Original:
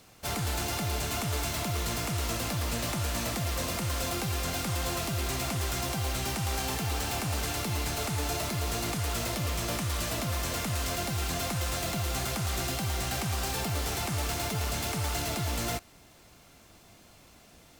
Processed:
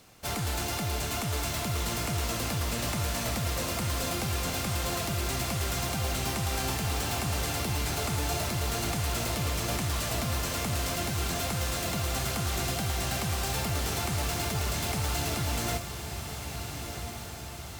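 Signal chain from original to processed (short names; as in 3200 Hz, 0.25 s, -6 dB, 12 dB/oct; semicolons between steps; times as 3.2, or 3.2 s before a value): on a send: diffused feedback echo 1.396 s, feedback 60%, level -8 dB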